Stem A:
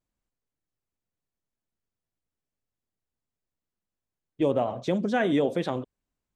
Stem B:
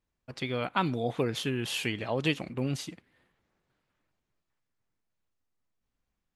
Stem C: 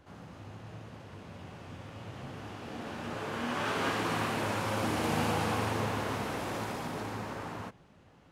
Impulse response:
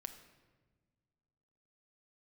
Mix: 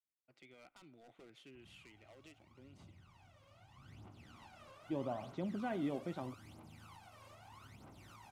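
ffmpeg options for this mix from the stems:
-filter_complex "[0:a]lowpass=f=1.5k:p=1,adelay=500,volume=-12dB[a];[1:a]acrossover=split=280 2600:gain=0.0794 1 0.112[b][c][d];[b][c][d]amix=inputs=3:normalize=0,asoftclip=type=hard:threshold=-29.5dB,equalizer=f=125:t=o:w=1:g=6,equalizer=f=1k:t=o:w=1:g=-11,equalizer=f=8k:t=o:w=1:g=6,volume=-16.5dB[e];[2:a]acompressor=threshold=-41dB:ratio=4,aphaser=in_gain=1:out_gain=1:delay=1.9:decay=0.79:speed=0.79:type=triangular,adelay=1550,volume=-11dB,afade=t=in:st=3.74:d=0.4:silence=0.398107[f];[e][f]amix=inputs=2:normalize=0,equalizer=f=220:w=1.5:g=-3,alimiter=level_in=23dB:limit=-24dB:level=0:latency=1:release=378,volume=-23dB,volume=0dB[g];[a][g]amix=inputs=2:normalize=0,equalizer=f=470:t=o:w=0.38:g=-10.5,bandreject=f=1.7k:w=6.6"

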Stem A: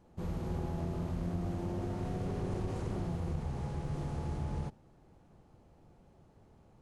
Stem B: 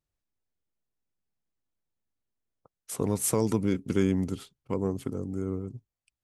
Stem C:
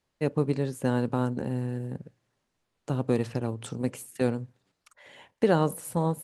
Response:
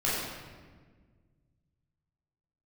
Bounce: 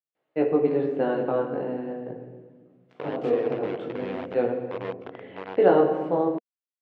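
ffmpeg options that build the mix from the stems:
-filter_complex "[0:a]aeval=exprs='val(0)*pow(10,-18*(0.5-0.5*cos(2*PI*1.4*n/s))/20)':c=same,volume=-8dB[a];[1:a]highpass=f=86:p=1,volume=-5dB,asplit=3[b][c][d];[c]volume=-18.5dB[e];[2:a]equalizer=f=300:t=o:w=0.52:g=8,flanger=delay=15.5:depth=6.6:speed=0.43,adelay=150,volume=1dB,asplit=2[f][g];[g]volume=-13dB[h];[d]apad=whole_len=281493[i];[f][i]sidechaincompress=threshold=-34dB:ratio=8:attack=16:release=175[j];[a][b]amix=inputs=2:normalize=0,acrusher=bits=4:mix=0:aa=0.000001,alimiter=level_in=2dB:limit=-24dB:level=0:latency=1:release=77,volume=-2dB,volume=0dB[k];[3:a]atrim=start_sample=2205[l];[e][h]amix=inputs=2:normalize=0[m];[m][l]afir=irnorm=-1:irlink=0[n];[j][k][n]amix=inputs=3:normalize=0,highpass=220,equalizer=f=230:t=q:w=4:g=-9,equalizer=f=480:t=q:w=4:g=6,equalizer=f=690:t=q:w=4:g=7,lowpass=f=3k:w=0.5412,lowpass=f=3k:w=1.3066"

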